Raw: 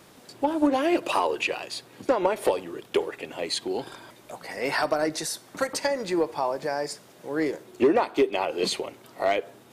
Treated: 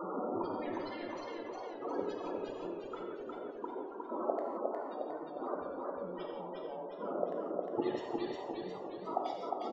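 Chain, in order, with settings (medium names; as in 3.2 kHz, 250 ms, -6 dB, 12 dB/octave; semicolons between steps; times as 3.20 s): zero-crossing glitches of -26 dBFS; steep low-pass 1.4 kHz 36 dB/octave; peaking EQ 140 Hz -15 dB 0.4 oct; level held to a coarse grid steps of 23 dB; sine folder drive 16 dB, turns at -20.5 dBFS; inverted gate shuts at -30 dBFS, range -32 dB; loudest bins only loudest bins 16; speakerphone echo 90 ms, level -9 dB; gated-style reverb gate 200 ms flat, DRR 1 dB; modulated delay 357 ms, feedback 49%, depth 56 cents, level -3 dB; trim +12 dB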